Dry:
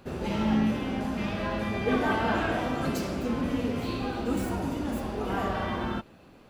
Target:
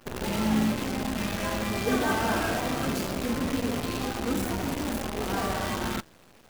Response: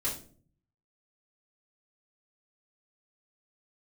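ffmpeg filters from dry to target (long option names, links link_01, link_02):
-af "bandreject=frequency=160.1:width_type=h:width=4,bandreject=frequency=320.2:width_type=h:width=4,bandreject=frequency=480.3:width_type=h:width=4,bandreject=frequency=640.4:width_type=h:width=4,bandreject=frequency=800.5:width_type=h:width=4,bandreject=frequency=960.6:width_type=h:width=4,bandreject=frequency=1120.7:width_type=h:width=4,bandreject=frequency=1280.8:width_type=h:width=4,bandreject=frequency=1440.9:width_type=h:width=4,bandreject=frequency=1601:width_type=h:width=4,bandreject=frequency=1761.1:width_type=h:width=4,bandreject=frequency=1921.2:width_type=h:width=4,bandreject=frequency=2081.3:width_type=h:width=4,bandreject=frequency=2241.4:width_type=h:width=4,bandreject=frequency=2401.5:width_type=h:width=4,bandreject=frequency=2561.6:width_type=h:width=4,bandreject=frequency=2721.7:width_type=h:width=4,bandreject=frequency=2881.8:width_type=h:width=4,bandreject=frequency=3041.9:width_type=h:width=4,bandreject=frequency=3202:width_type=h:width=4,bandreject=frequency=3362.1:width_type=h:width=4,bandreject=frequency=3522.2:width_type=h:width=4,bandreject=frequency=3682.3:width_type=h:width=4,bandreject=frequency=3842.4:width_type=h:width=4,bandreject=frequency=4002.5:width_type=h:width=4,bandreject=frequency=4162.6:width_type=h:width=4,bandreject=frequency=4322.7:width_type=h:width=4,bandreject=frequency=4482.8:width_type=h:width=4,bandreject=frequency=4642.9:width_type=h:width=4,bandreject=frequency=4803:width_type=h:width=4,bandreject=frequency=4963.1:width_type=h:width=4,bandreject=frequency=5123.2:width_type=h:width=4,bandreject=frequency=5283.3:width_type=h:width=4,bandreject=frequency=5443.4:width_type=h:width=4,bandreject=frequency=5603.5:width_type=h:width=4,bandreject=frequency=5763.6:width_type=h:width=4,bandreject=frequency=5923.7:width_type=h:width=4,bandreject=frequency=6083.8:width_type=h:width=4,bandreject=frequency=6243.9:width_type=h:width=4,bandreject=frequency=6404:width_type=h:width=4,acrusher=bits=6:dc=4:mix=0:aa=0.000001"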